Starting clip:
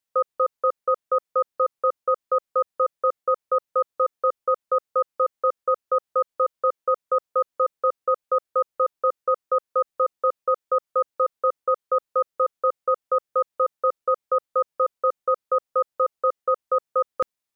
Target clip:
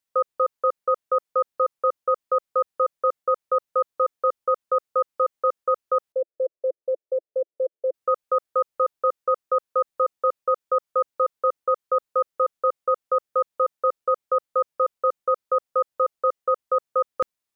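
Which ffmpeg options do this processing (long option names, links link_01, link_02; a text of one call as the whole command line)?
ffmpeg -i in.wav -filter_complex "[0:a]asettb=1/sr,asplit=3[link_01][link_02][link_03];[link_01]atrim=end=6.124[link_04];[link_02]atrim=start=6.12:end=7.94,asetpts=PTS-STARTPTS,afade=type=in:duration=0.004:curve=qsin,afade=type=out:start_time=1.816:duration=0.004:curve=qsin,asuperpass=centerf=460:order=8:qfactor=1.5[link_05];[link_03]atrim=start=7.936[link_06];[link_04][link_05]acrossfade=duration=0.004:curve1=hsin:curve2=qsin[link_07];[link_07][link_06]acrossfade=duration=0.004:curve1=qsin:curve2=hsin" out.wav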